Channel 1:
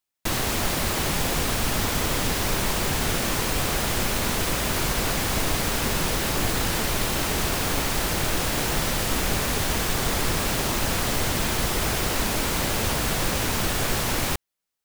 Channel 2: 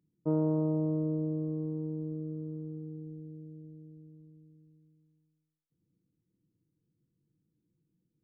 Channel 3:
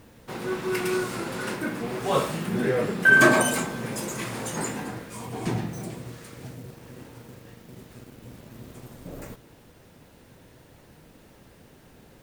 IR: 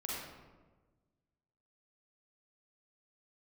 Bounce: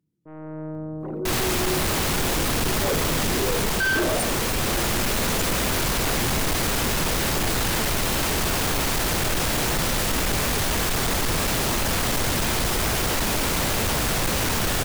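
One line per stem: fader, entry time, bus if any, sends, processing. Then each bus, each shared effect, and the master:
-3.0 dB, 1.00 s, no send, none
-8.5 dB, 0.00 s, no send, sine folder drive 6 dB, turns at -19 dBFS; peak limiter -28 dBFS, peak gain reduction 9 dB
-6.5 dB, 0.75 s, no send, resonances exaggerated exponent 3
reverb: none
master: level rider gain up to 9 dB; transient shaper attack -5 dB, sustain 0 dB; saturation -19 dBFS, distortion -11 dB

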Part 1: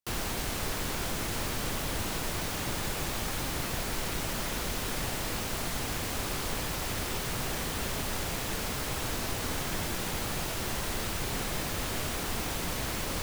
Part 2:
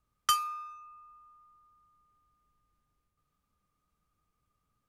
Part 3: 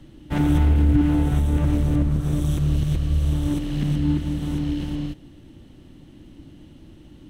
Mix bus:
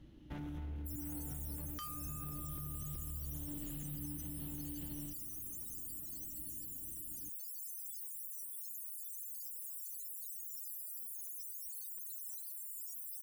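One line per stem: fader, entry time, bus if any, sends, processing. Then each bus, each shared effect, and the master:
+1.5 dB, 0.80 s, no bus, no send, differentiator; loudest bins only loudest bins 32
+0.5 dB, 1.50 s, bus A, no send, peaking EQ 390 Hz +11.5 dB 2.5 oct; Shepard-style phaser falling 0.72 Hz
-13.5 dB, 0.00 s, bus A, no send, peak limiter -18.5 dBFS, peak gain reduction 11 dB; hum 60 Hz, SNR 24 dB
bus A: 0.0 dB, peaking EQ 8.3 kHz -11.5 dB 0.25 oct; compression, threshold -40 dBFS, peak gain reduction 17 dB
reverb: none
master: peak limiter -34 dBFS, peak gain reduction 10 dB

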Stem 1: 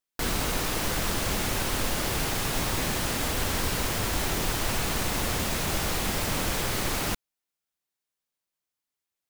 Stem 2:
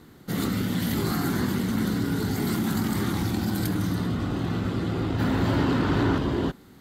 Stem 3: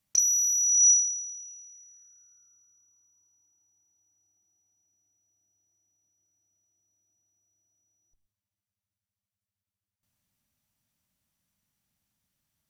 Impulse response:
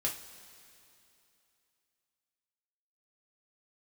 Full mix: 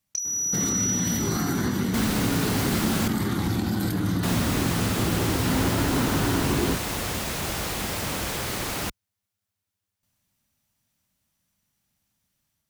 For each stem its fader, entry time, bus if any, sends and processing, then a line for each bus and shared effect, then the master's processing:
-0.5 dB, 1.75 s, muted 3.08–4.23 s, no bus, no send, high-pass 48 Hz
+2.5 dB, 0.25 s, bus A, no send, compression 2.5:1, threshold -30 dBFS, peak gain reduction 8 dB
+1.0 dB, 0.00 s, bus A, no send, compression 5:1, threshold -28 dBFS, peak gain reduction 10 dB
bus A: 0.0 dB, level rider gain up to 4 dB; peak limiter -16 dBFS, peak gain reduction 4.5 dB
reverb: none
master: none

